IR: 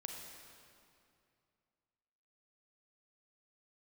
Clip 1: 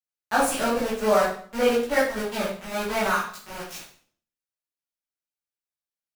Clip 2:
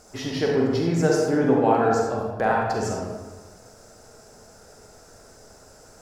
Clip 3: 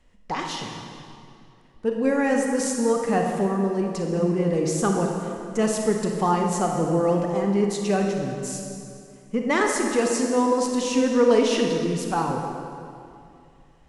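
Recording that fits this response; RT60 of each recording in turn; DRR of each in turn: 3; 0.50, 1.3, 2.5 seconds; −10.5, −2.0, 1.5 decibels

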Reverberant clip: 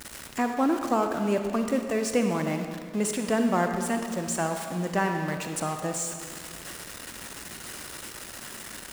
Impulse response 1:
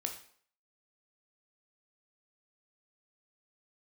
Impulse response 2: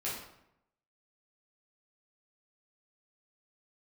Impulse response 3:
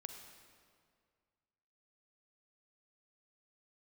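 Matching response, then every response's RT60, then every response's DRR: 3; 0.55, 0.80, 2.1 seconds; 3.5, −8.0, 5.0 decibels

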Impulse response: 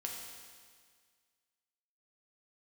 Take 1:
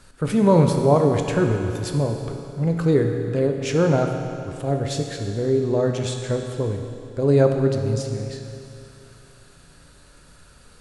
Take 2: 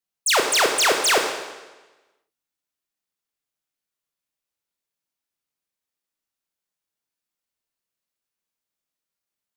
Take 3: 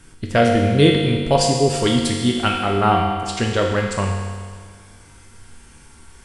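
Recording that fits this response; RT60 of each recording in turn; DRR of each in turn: 3; 2.7, 1.2, 1.8 seconds; 3.5, 3.0, −1.0 decibels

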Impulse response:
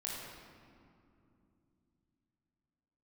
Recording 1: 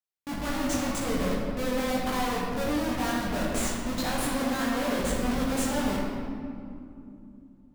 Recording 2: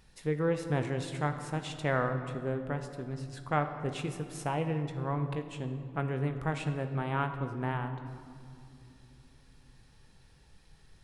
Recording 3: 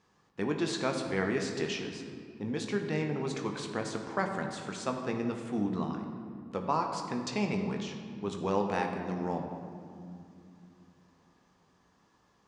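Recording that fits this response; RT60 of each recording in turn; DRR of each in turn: 1; 2.7 s, non-exponential decay, non-exponential decay; −5.5, 7.0, 3.0 decibels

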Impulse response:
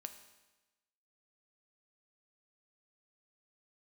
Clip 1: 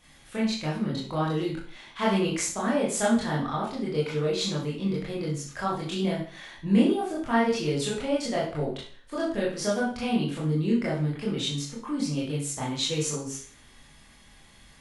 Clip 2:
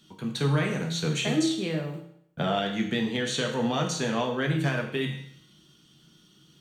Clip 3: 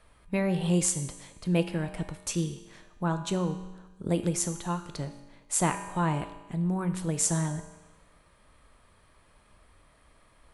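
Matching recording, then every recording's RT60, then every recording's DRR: 3; 0.45, 0.65, 1.1 seconds; −6.5, 1.0, 7.0 decibels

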